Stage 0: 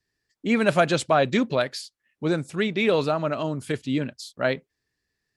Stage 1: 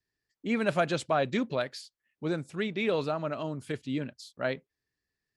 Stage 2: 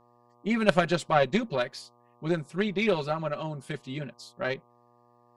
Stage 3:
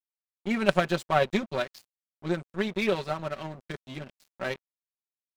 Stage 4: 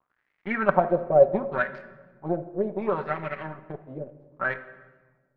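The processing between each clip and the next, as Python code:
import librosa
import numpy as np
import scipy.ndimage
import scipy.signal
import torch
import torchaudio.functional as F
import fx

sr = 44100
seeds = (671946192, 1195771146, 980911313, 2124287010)

y1 = fx.high_shelf(x, sr, hz=7000.0, db=-4.5)
y1 = F.gain(torch.from_numpy(y1), -7.0).numpy()
y2 = y1 + 0.93 * np.pad(y1, (int(5.3 * sr / 1000.0), 0))[:len(y1)]
y2 = fx.dmg_buzz(y2, sr, base_hz=120.0, harmonics=10, level_db=-60.0, tilt_db=0, odd_only=False)
y2 = fx.cheby_harmonics(y2, sr, harmonics=(3, 7, 8), levels_db=(-16, -37, -38), full_scale_db=-7.5)
y2 = F.gain(torch.from_numpy(y2), 5.5).numpy()
y3 = np.sign(y2) * np.maximum(np.abs(y2) - 10.0 ** (-40.0 / 20.0), 0.0)
y4 = fx.dmg_crackle(y3, sr, seeds[0], per_s=180.0, level_db=-56.0)
y4 = fx.filter_lfo_lowpass(y4, sr, shape='sine', hz=0.69, low_hz=520.0, high_hz=2100.0, q=5.3)
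y4 = fx.room_shoebox(y4, sr, seeds[1], volume_m3=1000.0, walls='mixed', distance_m=0.47)
y4 = F.gain(torch.from_numpy(y4), -2.0).numpy()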